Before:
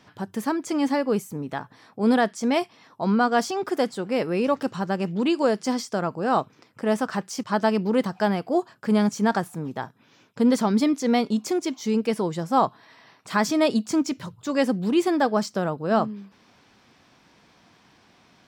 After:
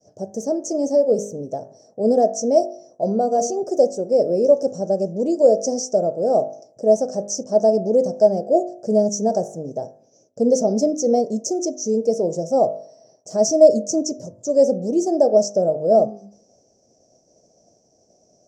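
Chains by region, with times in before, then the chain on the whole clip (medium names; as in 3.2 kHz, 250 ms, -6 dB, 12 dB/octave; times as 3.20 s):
3.08–3.64 s: band-stop 5.3 kHz, Q 5.1 + de-hum 237.7 Hz, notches 2
whole clip: FFT filter 290 Hz 0 dB, 630 Hz +15 dB, 1 kHz -21 dB, 2.1 kHz -27 dB, 3.8 kHz -25 dB, 5.9 kHz +15 dB, 11 kHz -13 dB; expander -50 dBFS; de-hum 51.03 Hz, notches 39; trim -1 dB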